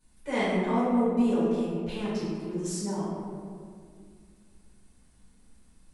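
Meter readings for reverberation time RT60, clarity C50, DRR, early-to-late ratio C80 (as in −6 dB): 2.1 s, −2.5 dB, −13.5 dB, 0.0 dB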